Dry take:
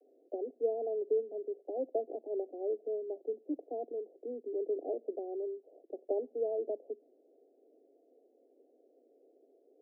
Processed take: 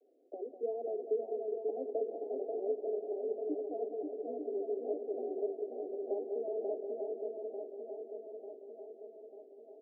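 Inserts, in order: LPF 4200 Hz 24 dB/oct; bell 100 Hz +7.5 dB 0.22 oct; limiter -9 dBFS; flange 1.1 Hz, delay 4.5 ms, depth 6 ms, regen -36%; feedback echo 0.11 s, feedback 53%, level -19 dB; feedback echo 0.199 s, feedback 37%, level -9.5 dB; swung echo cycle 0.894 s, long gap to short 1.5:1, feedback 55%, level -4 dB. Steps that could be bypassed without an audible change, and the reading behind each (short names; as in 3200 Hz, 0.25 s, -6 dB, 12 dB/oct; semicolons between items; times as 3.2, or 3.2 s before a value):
LPF 4200 Hz: input band ends at 810 Hz; bell 100 Hz: input band starts at 210 Hz; limiter -9 dBFS: input peak -21.0 dBFS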